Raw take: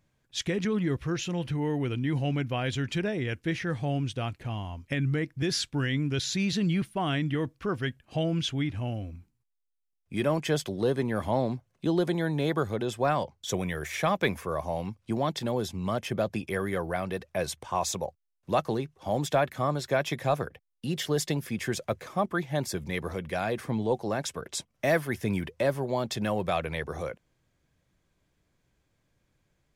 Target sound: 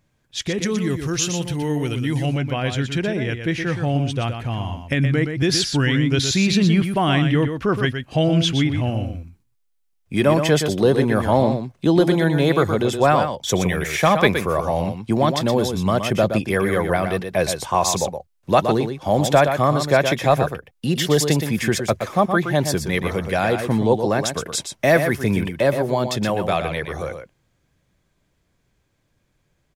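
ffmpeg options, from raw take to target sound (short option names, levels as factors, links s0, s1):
-filter_complex "[0:a]asettb=1/sr,asplit=3[s0][s1][s2];[s0]atrim=end=0.614[s3];[s1]atrim=start=0.61:end=2.26,asetpts=PTS-STARTPTS,afade=t=in:d=0.004:c=qsin,afade=t=out:st=1.646:d=0.004:c=qsin,bass=f=250:g=0,treble=f=4000:g=14[s4];[s2]atrim=start=2.256[s5];[s3][s4]acrossfade=d=0.004:c1=hsin:c2=qsin[s6];[s6][s5]acrossfade=d=0.004:c1=qsin:c2=hsin,asplit=2[s7][s8];[s8]aecho=0:1:120:0.422[s9];[s7][s9]amix=inputs=2:normalize=0,dynaudnorm=f=270:g=31:m=1.78,volume=1.78"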